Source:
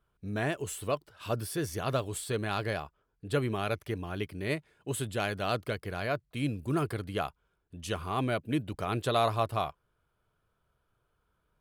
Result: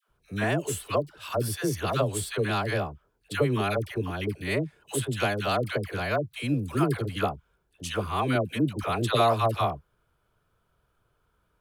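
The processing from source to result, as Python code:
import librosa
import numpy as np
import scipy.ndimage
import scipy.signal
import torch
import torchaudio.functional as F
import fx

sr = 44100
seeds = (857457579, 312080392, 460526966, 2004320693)

y = fx.dispersion(x, sr, late='lows', ms=89.0, hz=720.0)
y = F.gain(torch.from_numpy(y), 5.0).numpy()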